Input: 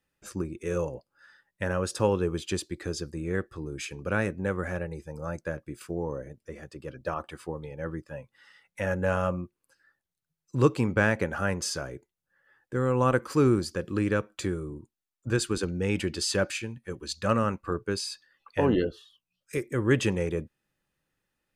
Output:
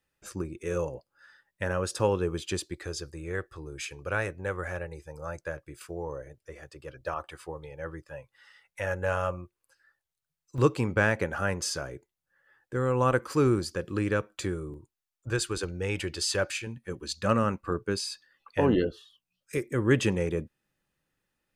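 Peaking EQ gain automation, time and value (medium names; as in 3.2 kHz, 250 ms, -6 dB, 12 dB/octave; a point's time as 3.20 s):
peaking EQ 220 Hz 1 oct
-4.5 dB
from 2.74 s -14.5 dB
from 10.58 s -4 dB
from 14.74 s -11 dB
from 16.67 s +0.5 dB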